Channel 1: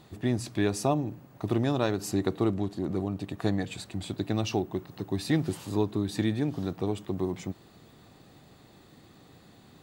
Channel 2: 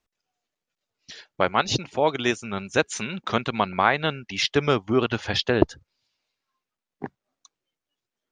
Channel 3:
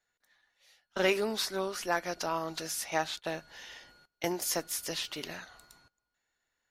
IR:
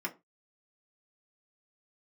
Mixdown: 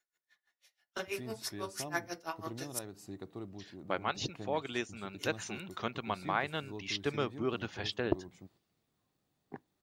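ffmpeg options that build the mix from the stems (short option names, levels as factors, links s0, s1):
-filter_complex "[0:a]agate=range=0.355:threshold=0.00562:ratio=16:detection=peak,acrusher=bits=10:mix=0:aa=0.000001,adelay=950,volume=0.126[s0];[1:a]adelay=2500,volume=0.224,asplit=2[s1][s2];[s2]volume=0.0794[s3];[2:a]highshelf=f=3400:g=6.5,aeval=exprs='val(0)*pow(10,-31*(0.5-0.5*cos(2*PI*6.1*n/s))/20)':c=same,volume=0.531,asplit=3[s4][s5][s6];[s4]atrim=end=2.79,asetpts=PTS-STARTPTS,afade=t=out:st=2.786:d=0.004:c=hsin[s7];[s5]atrim=start=2.79:end=5.18,asetpts=PTS-STARTPTS,volume=0[s8];[s6]atrim=start=5.18,asetpts=PTS-STARTPTS,afade=t=in:d=0.004:c=hsin[s9];[s7][s8][s9]concat=n=3:v=0:a=1,asplit=2[s10][s11];[s11]volume=0.562[s12];[3:a]atrim=start_sample=2205[s13];[s3][s12]amix=inputs=2:normalize=0[s14];[s14][s13]afir=irnorm=-1:irlink=0[s15];[s0][s1][s10][s15]amix=inputs=4:normalize=0"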